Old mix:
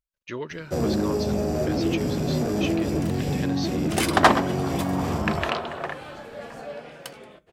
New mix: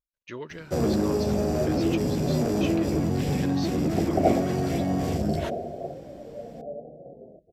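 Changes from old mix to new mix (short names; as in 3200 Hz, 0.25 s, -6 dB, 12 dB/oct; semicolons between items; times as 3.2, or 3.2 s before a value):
speech -4.5 dB; second sound: add steep low-pass 730 Hz 96 dB/oct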